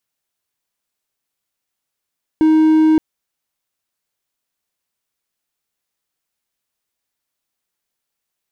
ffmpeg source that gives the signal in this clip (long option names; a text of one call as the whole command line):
ffmpeg -f lavfi -i "aevalsrc='0.473*(1-4*abs(mod(314*t+0.25,1)-0.5))':duration=0.57:sample_rate=44100" out.wav